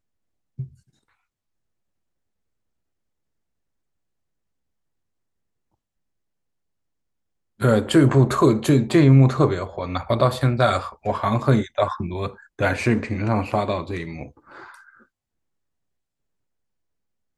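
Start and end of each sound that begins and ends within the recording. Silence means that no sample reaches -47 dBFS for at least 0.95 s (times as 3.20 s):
7.59–15.03 s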